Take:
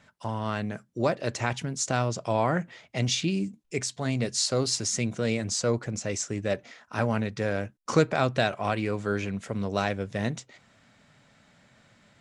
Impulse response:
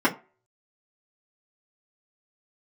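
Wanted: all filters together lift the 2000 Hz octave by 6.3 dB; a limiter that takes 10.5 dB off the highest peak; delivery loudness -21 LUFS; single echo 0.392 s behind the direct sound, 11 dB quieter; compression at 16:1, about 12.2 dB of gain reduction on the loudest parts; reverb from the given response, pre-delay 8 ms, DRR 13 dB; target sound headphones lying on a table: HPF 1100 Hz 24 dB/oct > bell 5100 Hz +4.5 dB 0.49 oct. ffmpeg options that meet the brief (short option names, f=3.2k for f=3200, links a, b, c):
-filter_complex "[0:a]equalizer=f=2k:t=o:g=8.5,acompressor=threshold=-26dB:ratio=16,alimiter=limit=-22.5dB:level=0:latency=1,aecho=1:1:392:0.282,asplit=2[a][b];[1:a]atrim=start_sample=2205,adelay=8[c];[b][c]afir=irnorm=-1:irlink=0,volume=-29dB[d];[a][d]amix=inputs=2:normalize=0,highpass=f=1.1k:w=0.5412,highpass=f=1.1k:w=1.3066,equalizer=f=5.1k:t=o:w=0.49:g=4.5,volume=15dB"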